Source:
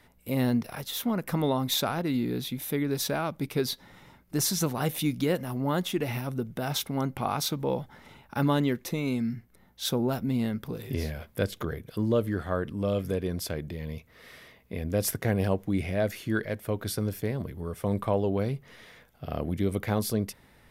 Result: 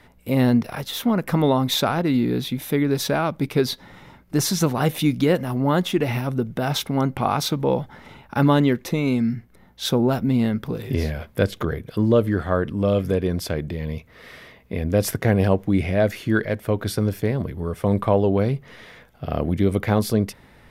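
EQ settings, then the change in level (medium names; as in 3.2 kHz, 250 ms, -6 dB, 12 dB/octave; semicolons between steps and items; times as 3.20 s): treble shelf 5.6 kHz -8.5 dB; +8.0 dB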